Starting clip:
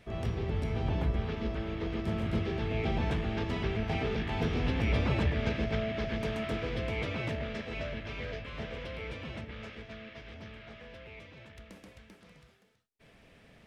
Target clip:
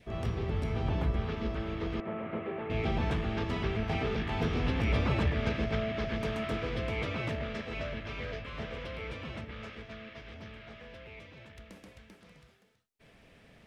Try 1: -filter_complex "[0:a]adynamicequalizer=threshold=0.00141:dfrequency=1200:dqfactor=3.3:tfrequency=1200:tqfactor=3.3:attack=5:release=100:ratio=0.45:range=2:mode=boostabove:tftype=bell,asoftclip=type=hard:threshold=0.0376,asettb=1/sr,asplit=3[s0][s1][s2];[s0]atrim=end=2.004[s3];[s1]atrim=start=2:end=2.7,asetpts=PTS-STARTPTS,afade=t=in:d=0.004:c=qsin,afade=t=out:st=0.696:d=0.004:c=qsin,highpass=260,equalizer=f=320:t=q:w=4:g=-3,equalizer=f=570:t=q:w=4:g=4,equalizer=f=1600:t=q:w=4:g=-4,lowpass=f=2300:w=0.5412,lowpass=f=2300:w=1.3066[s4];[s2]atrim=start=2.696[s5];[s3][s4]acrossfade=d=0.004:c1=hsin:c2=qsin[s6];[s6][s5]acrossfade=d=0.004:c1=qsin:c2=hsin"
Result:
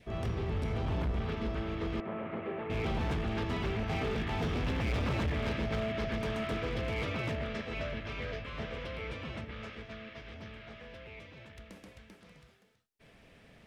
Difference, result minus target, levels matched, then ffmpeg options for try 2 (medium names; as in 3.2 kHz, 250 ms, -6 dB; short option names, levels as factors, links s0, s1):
hard clipper: distortion +28 dB
-filter_complex "[0:a]adynamicequalizer=threshold=0.00141:dfrequency=1200:dqfactor=3.3:tfrequency=1200:tqfactor=3.3:attack=5:release=100:ratio=0.45:range=2:mode=boostabove:tftype=bell,asoftclip=type=hard:threshold=0.112,asettb=1/sr,asplit=3[s0][s1][s2];[s0]atrim=end=2.004[s3];[s1]atrim=start=2:end=2.7,asetpts=PTS-STARTPTS,afade=t=in:d=0.004:c=qsin,afade=t=out:st=0.696:d=0.004:c=qsin,highpass=260,equalizer=f=320:t=q:w=4:g=-3,equalizer=f=570:t=q:w=4:g=4,equalizer=f=1600:t=q:w=4:g=-4,lowpass=f=2300:w=0.5412,lowpass=f=2300:w=1.3066[s4];[s2]atrim=start=2.696[s5];[s3][s4]acrossfade=d=0.004:c1=hsin:c2=qsin[s6];[s6][s5]acrossfade=d=0.004:c1=qsin:c2=hsin"